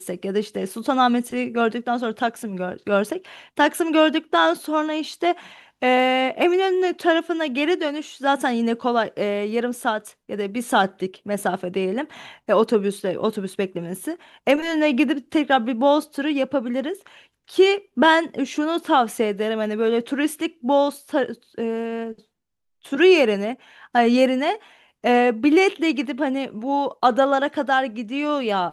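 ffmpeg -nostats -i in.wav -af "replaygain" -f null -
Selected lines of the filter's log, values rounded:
track_gain = +0.2 dB
track_peak = 0.440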